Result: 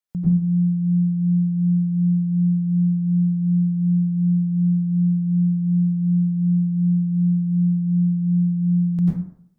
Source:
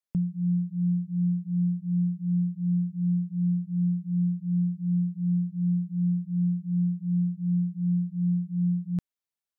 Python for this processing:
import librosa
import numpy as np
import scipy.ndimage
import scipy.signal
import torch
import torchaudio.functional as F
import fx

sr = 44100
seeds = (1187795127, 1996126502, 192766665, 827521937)

y = fx.rev_plate(x, sr, seeds[0], rt60_s=0.66, hf_ratio=0.45, predelay_ms=80, drr_db=-7.0)